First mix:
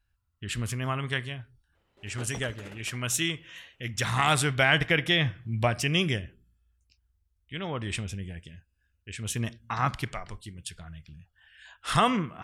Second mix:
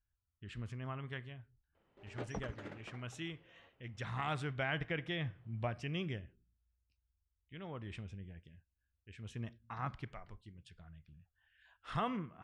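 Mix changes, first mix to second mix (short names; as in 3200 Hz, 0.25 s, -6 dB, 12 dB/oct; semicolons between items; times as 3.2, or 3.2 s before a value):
speech -11.5 dB; master: add tape spacing loss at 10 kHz 23 dB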